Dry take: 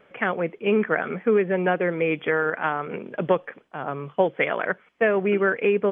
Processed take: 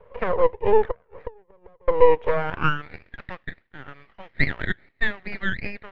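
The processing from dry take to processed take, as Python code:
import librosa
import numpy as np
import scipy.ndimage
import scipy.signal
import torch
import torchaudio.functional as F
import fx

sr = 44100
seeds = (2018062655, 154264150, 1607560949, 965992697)

y = fx.gate_flip(x, sr, shuts_db=-17.0, range_db=-35, at=(0.9, 1.88))
y = fx.filter_sweep_highpass(y, sr, from_hz=480.0, to_hz=1900.0, start_s=2.24, end_s=2.83, q=6.7)
y = np.maximum(y, 0.0)
y = scipy.signal.sosfilt(scipy.signal.butter(2, 3200.0, 'lowpass', fs=sr, output='sos'), y)
y = fx.high_shelf(y, sr, hz=2400.0, db=-12.0)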